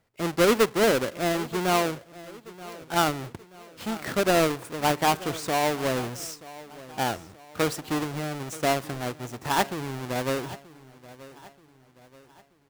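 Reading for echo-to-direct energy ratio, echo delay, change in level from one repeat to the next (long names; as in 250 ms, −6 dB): −17.5 dB, 930 ms, −7.0 dB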